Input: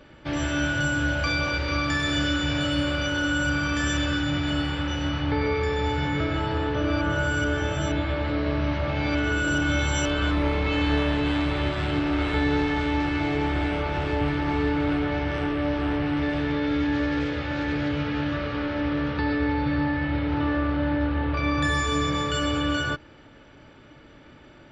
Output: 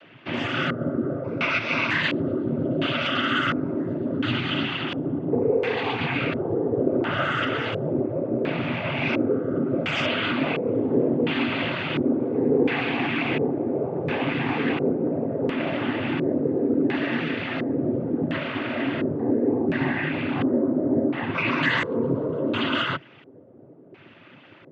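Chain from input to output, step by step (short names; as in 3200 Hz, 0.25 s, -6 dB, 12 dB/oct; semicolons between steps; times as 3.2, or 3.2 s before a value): noise vocoder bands 16; LFO low-pass square 0.71 Hz 470–2800 Hz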